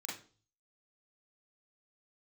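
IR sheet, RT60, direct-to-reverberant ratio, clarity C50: 0.40 s, -6.0 dB, 4.5 dB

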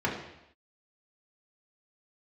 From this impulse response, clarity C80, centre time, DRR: 8.0 dB, 37 ms, -4.0 dB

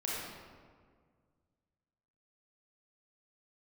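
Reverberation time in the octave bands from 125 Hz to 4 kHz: 2.6 s, 2.2 s, 1.9 s, 1.7 s, 1.4 s, 1.0 s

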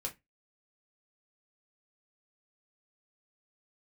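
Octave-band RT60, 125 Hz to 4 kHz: 0.25 s, 0.25 s, 0.20 s, 0.15 s, 0.20 s, 0.15 s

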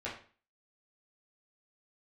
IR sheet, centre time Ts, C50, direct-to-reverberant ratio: 31 ms, 6.5 dB, -8.0 dB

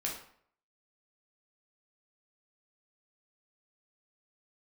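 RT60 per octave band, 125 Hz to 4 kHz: 0.55 s, 0.55 s, 0.60 s, 0.60 s, 0.55 s, 0.45 s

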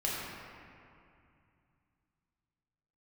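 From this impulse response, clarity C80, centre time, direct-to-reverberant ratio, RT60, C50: -0.5 dB, 144 ms, -6.5 dB, 2.5 s, -2.5 dB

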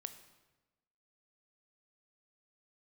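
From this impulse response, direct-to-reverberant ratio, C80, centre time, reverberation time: 9.0 dB, 13.0 dB, 11 ms, 1.1 s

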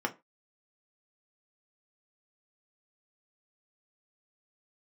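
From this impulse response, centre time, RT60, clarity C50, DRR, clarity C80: 7 ms, 0.25 s, 19.0 dB, 2.5 dB, 27.0 dB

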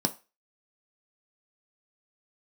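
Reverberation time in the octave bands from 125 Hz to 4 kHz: 0.25 s, 0.20 s, 0.30 s, 0.30 s, 0.30 s, 0.30 s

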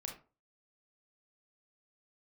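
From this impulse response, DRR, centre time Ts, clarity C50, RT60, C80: 1.0 dB, 23 ms, 7.0 dB, 0.35 s, 14.0 dB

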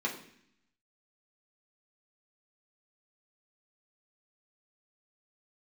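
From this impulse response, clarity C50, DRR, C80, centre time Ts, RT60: 8.5 dB, -3.5 dB, 12.0 dB, 21 ms, 0.65 s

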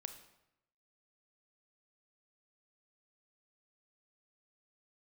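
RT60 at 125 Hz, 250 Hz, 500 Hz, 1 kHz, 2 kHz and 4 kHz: 1.0 s, 0.90 s, 0.85 s, 0.85 s, 0.75 s, 0.65 s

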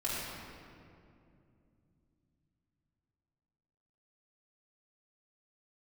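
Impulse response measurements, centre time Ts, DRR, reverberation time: 149 ms, -9.0 dB, 2.6 s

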